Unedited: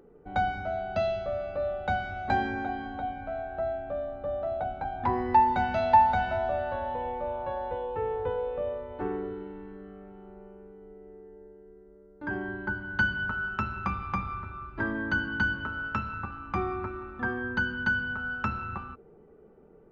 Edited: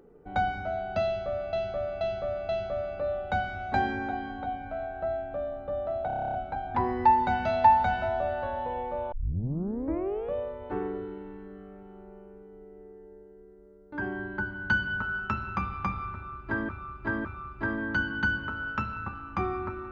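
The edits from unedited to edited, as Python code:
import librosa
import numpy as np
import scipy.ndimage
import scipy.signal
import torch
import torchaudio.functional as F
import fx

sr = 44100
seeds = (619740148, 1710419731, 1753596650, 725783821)

y = fx.edit(x, sr, fx.repeat(start_s=1.05, length_s=0.48, count=4),
    fx.stutter(start_s=4.63, slice_s=0.03, count=10),
    fx.tape_start(start_s=7.41, length_s=1.21),
    fx.repeat(start_s=14.42, length_s=0.56, count=3), tone=tone)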